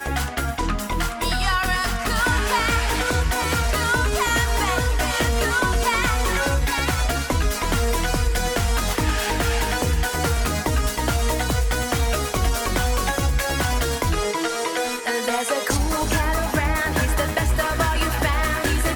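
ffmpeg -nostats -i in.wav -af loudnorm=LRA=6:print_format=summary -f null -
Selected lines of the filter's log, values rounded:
Input Integrated:    -21.9 LUFS
Input True Peak:      -7.5 dBTP
Input LRA:             1.6 LU
Input Threshold:     -31.9 LUFS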